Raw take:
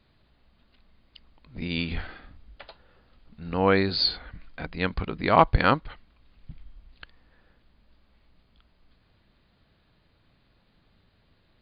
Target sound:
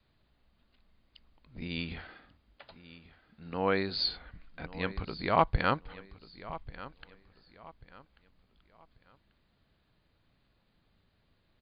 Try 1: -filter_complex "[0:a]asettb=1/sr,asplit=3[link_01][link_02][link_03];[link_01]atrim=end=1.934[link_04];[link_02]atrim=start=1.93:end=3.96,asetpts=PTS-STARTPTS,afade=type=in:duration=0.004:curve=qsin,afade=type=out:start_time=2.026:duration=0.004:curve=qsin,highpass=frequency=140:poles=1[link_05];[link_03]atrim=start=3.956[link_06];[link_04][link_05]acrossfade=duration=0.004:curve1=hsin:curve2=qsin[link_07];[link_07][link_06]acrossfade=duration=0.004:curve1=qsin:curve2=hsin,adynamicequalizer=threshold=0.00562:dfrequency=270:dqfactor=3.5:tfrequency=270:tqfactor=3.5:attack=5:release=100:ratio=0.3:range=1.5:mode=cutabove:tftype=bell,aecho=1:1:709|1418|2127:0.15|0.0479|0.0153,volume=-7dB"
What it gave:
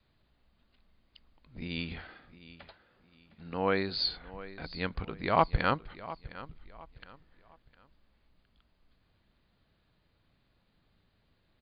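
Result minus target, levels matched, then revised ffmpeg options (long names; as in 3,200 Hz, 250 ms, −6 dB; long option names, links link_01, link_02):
echo 430 ms early
-filter_complex "[0:a]asettb=1/sr,asplit=3[link_01][link_02][link_03];[link_01]atrim=end=1.934[link_04];[link_02]atrim=start=1.93:end=3.96,asetpts=PTS-STARTPTS,afade=type=in:duration=0.004:curve=qsin,afade=type=out:start_time=2.026:duration=0.004:curve=qsin,highpass=frequency=140:poles=1[link_05];[link_03]atrim=start=3.956[link_06];[link_04][link_05]acrossfade=duration=0.004:curve1=hsin:curve2=qsin[link_07];[link_07][link_06]acrossfade=duration=0.004:curve1=qsin:curve2=hsin,adynamicequalizer=threshold=0.00562:dfrequency=270:dqfactor=3.5:tfrequency=270:tqfactor=3.5:attack=5:release=100:ratio=0.3:range=1.5:mode=cutabove:tftype=bell,aecho=1:1:1139|2278|3417:0.15|0.0479|0.0153,volume=-7dB"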